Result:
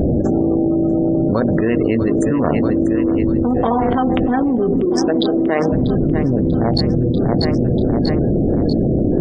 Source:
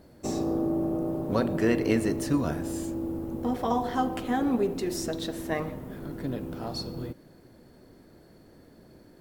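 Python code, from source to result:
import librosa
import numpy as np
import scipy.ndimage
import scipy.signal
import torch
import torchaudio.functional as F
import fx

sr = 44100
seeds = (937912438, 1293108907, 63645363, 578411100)

y = fx.wiener(x, sr, points=41)
y = fx.spec_gate(y, sr, threshold_db=-30, keep='strong')
y = fx.low_shelf(y, sr, hz=330.0, db=-12.0, at=(2.08, 3.22))
y = fx.highpass(y, sr, hz=260.0, slope=12, at=(4.85, 5.72))
y = fx.echo_feedback(y, sr, ms=641, feedback_pct=51, wet_db=-18.0)
y = fx.env_flatten(y, sr, amount_pct=100)
y = F.gain(torch.from_numpy(y), 5.5).numpy()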